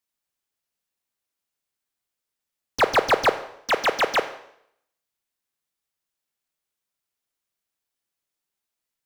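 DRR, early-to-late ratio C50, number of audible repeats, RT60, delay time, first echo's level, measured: 10.5 dB, 12.5 dB, none, 0.70 s, none, none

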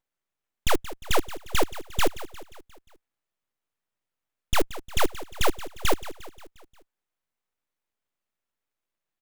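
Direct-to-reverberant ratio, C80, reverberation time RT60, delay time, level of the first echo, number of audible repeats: none, none, none, 0.177 s, -15.0 dB, 4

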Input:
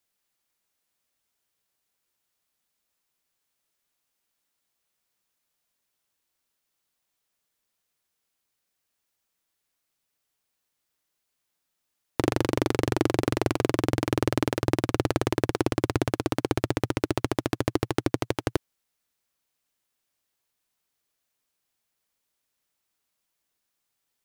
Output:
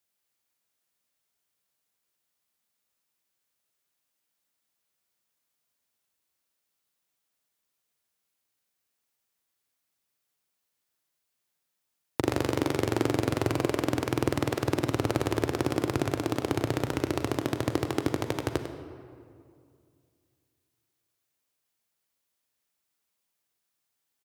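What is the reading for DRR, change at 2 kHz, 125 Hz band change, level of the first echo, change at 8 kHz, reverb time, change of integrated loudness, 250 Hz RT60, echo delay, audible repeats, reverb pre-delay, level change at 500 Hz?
6.0 dB, -2.0 dB, -2.0 dB, -11.0 dB, -1.5 dB, 2.3 s, -2.0 dB, 2.7 s, 99 ms, 1, 35 ms, -2.0 dB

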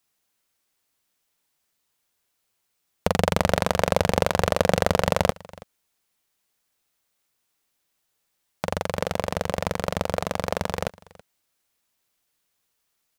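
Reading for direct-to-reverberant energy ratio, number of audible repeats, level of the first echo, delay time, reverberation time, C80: none, 1, -22.0 dB, 0.327 s, none, none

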